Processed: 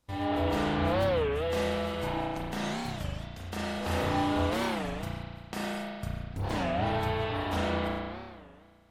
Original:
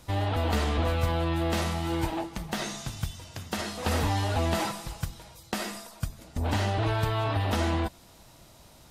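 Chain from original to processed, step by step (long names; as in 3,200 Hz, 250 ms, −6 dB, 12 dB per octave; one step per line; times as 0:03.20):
noise gate −42 dBFS, range −15 dB
spring reverb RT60 1.8 s, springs 34 ms, chirp 25 ms, DRR −7 dB
wow of a warped record 33 1/3 rpm, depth 250 cents
level −8 dB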